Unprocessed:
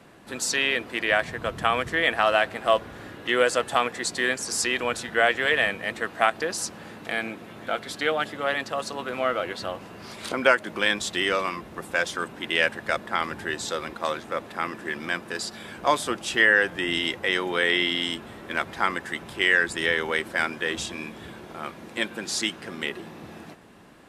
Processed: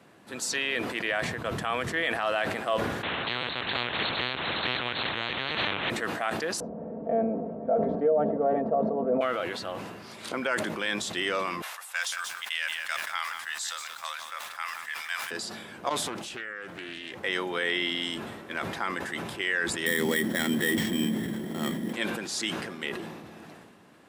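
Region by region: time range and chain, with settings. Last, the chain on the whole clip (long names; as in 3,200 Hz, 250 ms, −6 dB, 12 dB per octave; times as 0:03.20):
0:03.03–0:05.90: linear-prediction vocoder at 8 kHz pitch kept + every bin compressed towards the loudest bin 10 to 1
0:06.60–0:09.21: low-pass with resonance 600 Hz, resonance Q 4.1 + spectral tilt −2.5 dB per octave + comb filter 4.4 ms, depth 71%
0:11.62–0:15.31: Bessel high-pass filter 1,300 Hz, order 6 + high-shelf EQ 5,200 Hz +7 dB + feedback echo at a low word length 178 ms, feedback 35%, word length 7 bits, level −9 dB
0:15.89–0:17.24: downward compressor, threshold −31 dBFS + highs frequency-modulated by the lows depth 0.4 ms
0:19.86–0:21.93: samples sorted by size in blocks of 8 samples + hollow resonant body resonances 210/1,900/3,200 Hz, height 18 dB, ringing for 20 ms + bad sample-rate conversion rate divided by 4×, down none, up hold
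whole clip: brickwall limiter −12 dBFS; high-pass filter 94 Hz; level that may fall only so fast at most 37 dB per second; level −4.5 dB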